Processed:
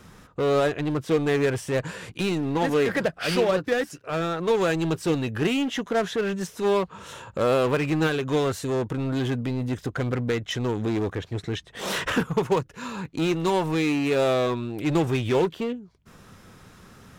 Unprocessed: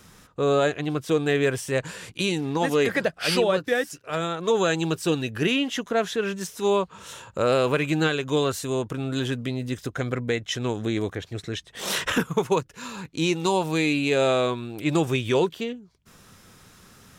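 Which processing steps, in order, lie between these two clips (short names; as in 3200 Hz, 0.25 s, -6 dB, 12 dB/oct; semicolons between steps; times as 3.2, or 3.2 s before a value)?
high shelf 2900 Hz -9.5 dB; in parallel at -4.5 dB: wavefolder -28 dBFS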